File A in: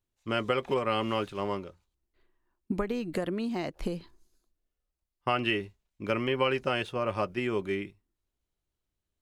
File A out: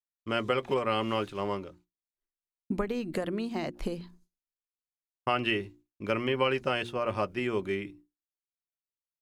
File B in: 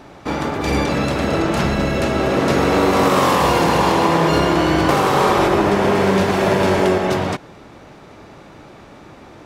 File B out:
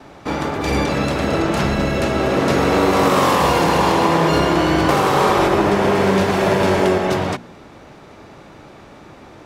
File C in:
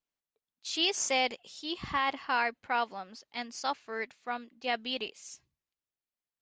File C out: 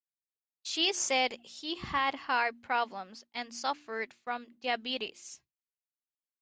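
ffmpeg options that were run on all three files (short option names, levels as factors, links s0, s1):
-af "bandreject=f=59.07:t=h:w=4,bandreject=f=118.14:t=h:w=4,bandreject=f=177.21:t=h:w=4,bandreject=f=236.28:t=h:w=4,bandreject=f=295.35:t=h:w=4,bandreject=f=354.42:t=h:w=4,agate=range=0.0224:threshold=0.00316:ratio=3:detection=peak"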